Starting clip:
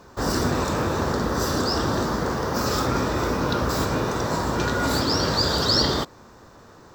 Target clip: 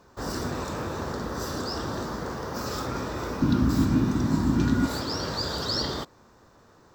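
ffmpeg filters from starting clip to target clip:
-filter_complex "[0:a]asettb=1/sr,asplit=3[a][b][c];[a]atrim=end=3.424[d];[b]atrim=start=3.42:end=4.86,asetpts=PTS-STARTPTS,afade=t=in:d=0.004:c=qsin,afade=t=out:st=1.436:d=0.004:c=qsin,lowshelf=f=360:t=q:w=3:g=9.5[e];[c]atrim=start=4.856[f];[d][e]acrossfade=d=0.004:c1=hsin:c2=qsin[g];[g][f]acrossfade=d=0.004:c1=qsin:c2=hsin,volume=-8dB"

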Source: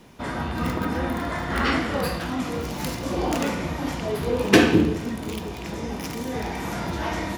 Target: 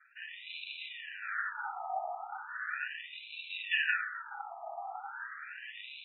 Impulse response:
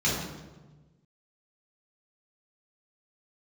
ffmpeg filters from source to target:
-filter_complex "[0:a]asetrate=53802,aresample=44100,acrusher=samples=41:mix=1:aa=0.000001,highshelf=f=5.2k:g=-9.5,asplit=2[a][b];[1:a]atrim=start_sample=2205[c];[b][c]afir=irnorm=-1:irlink=0,volume=-19dB[d];[a][d]amix=inputs=2:normalize=0,afftfilt=real='re*between(b*sr/1024,900*pow(3000/900,0.5+0.5*sin(2*PI*0.37*pts/sr))/1.41,900*pow(3000/900,0.5+0.5*sin(2*PI*0.37*pts/sr))*1.41)':imag='im*between(b*sr/1024,900*pow(3000/900,0.5+0.5*sin(2*PI*0.37*pts/sr))/1.41,900*pow(3000/900,0.5+0.5*sin(2*PI*0.37*pts/sr))*1.41)':win_size=1024:overlap=0.75"

